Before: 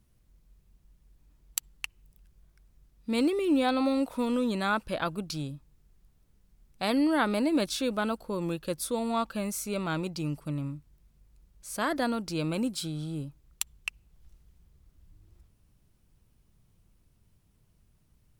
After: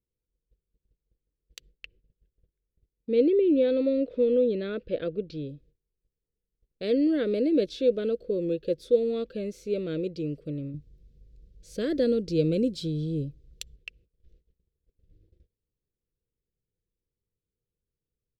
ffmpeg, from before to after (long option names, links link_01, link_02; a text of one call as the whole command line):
ffmpeg -i in.wav -filter_complex "[0:a]asettb=1/sr,asplit=3[link_01][link_02][link_03];[link_01]atrim=end=1.714[link_04];[link_02]atrim=start=1.71:end=5.49,asetpts=PTS-STARTPTS,afade=type=in:duration=0.004:curve=qsin,afade=type=out:start_time=3.776:duration=0.004:curve=qsin,lowpass=3700[link_05];[link_03]atrim=start=5.486[link_06];[link_04][link_05]acrossfade=duration=0.004:curve1=hsin:curve2=qsin[link_07];[link_07][link_06]acrossfade=duration=0.004:curve1=qsin:curve2=hsin,asettb=1/sr,asplit=3[link_08][link_09][link_10];[link_08]atrim=end=10.744[link_11];[link_09]atrim=start=10.74:end=13.76,asetpts=PTS-STARTPTS,afade=type=in:duration=0.004:curve=qsin,afade=type=out:start_time=3.016:duration=0.004:curve=qsin,bass=frequency=250:gain=9,treble=frequency=4000:gain=9[link_12];[link_10]atrim=start=13.756[link_13];[link_11][link_12]acrossfade=duration=0.004:curve1=hsin:curve2=qsin[link_14];[link_14][link_13]acrossfade=duration=0.004:curve1=qsin:curve2=hsin,firequalizer=gain_entry='entry(230,0);entry(480,15);entry(830,-28);entry(1600,-7);entry(3600,-2);entry(9300,-23)':delay=0.05:min_phase=1,agate=range=-21dB:threshold=-55dB:ratio=16:detection=peak,volume=-2.5dB" out.wav